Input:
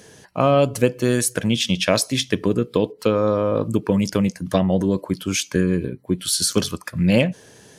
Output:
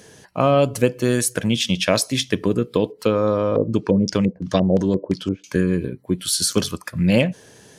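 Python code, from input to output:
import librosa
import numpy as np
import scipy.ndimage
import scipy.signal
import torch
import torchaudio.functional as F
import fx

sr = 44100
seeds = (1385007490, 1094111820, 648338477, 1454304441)

y = fx.filter_lfo_lowpass(x, sr, shape='square', hz=2.9, low_hz=470.0, high_hz=5800.0, q=1.8, at=(3.39, 5.44))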